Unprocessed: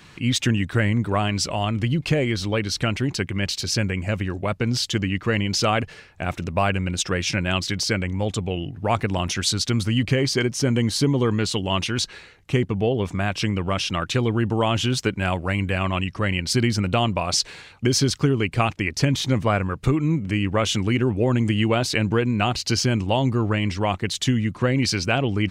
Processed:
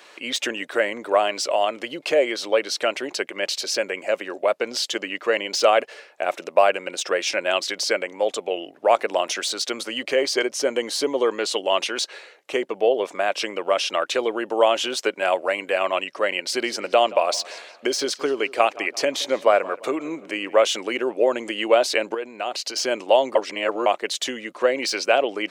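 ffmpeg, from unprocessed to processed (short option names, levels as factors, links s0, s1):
-filter_complex "[0:a]asettb=1/sr,asplit=3[s0][s1][s2];[s0]atrim=end=16.354[s3];[s1]atrim=start=16.35:end=20.64,asetpts=PTS-STARTPTS,afade=t=in:d=0.004:c=qsin,afade=t=out:st=4.286:d=0.004:c=qsin,asplit=2[s4][s5];[s5]adelay=173,lowpass=f=3700:p=1,volume=0.112,asplit=2[s6][s7];[s7]adelay=173,lowpass=f=3700:p=1,volume=0.47,asplit=2[s8][s9];[s9]adelay=173,lowpass=f=3700:p=1,volume=0.47,asplit=2[s10][s11];[s11]adelay=173,lowpass=f=3700:p=1,volume=0.47[s12];[s4][s6][s8][s10][s12]amix=inputs=5:normalize=0,atrim=end_sample=189189[s13];[s2]atrim=start=20.636[s14];[s3][s13]acrossfade=d=0.004:c1=hsin:c2=qsin[s15];[s15][s14]acrossfade=d=0.004:c1=qsin:c2=hsin,asettb=1/sr,asplit=3[s16][s17][s18];[s16]atrim=end=22.144[s19];[s17]atrim=start=22.14:end=22.76,asetpts=PTS-STARTPTS,afade=t=in:d=0.004:c=qsin,afade=t=out:st=0.616:d=0.004:c=qsin,acompressor=threshold=0.0631:ratio=10:attack=3.2:release=140:knee=1:detection=peak[s20];[s18]atrim=start=22.756[s21];[s19][s20]acrossfade=d=0.004:c1=hsin:c2=qsin[s22];[s22][s21]acrossfade=d=0.004:c1=qsin:c2=hsin,asplit=3[s23][s24][s25];[s23]atrim=end=23.352[s26];[s24]atrim=start=23.348:end=23.862,asetpts=PTS-STARTPTS,areverse[s27];[s25]atrim=start=23.858[s28];[s26][s27]acrossfade=d=0.004:c1=hsin:c2=hsin[s29];[s29][s28]acrossfade=d=0.004:c1=hsin:c2=hsin,deesser=0.45,highpass=f=370:w=0.5412,highpass=f=370:w=1.3066,equalizer=f=590:t=o:w=0.58:g=9,volume=1.12"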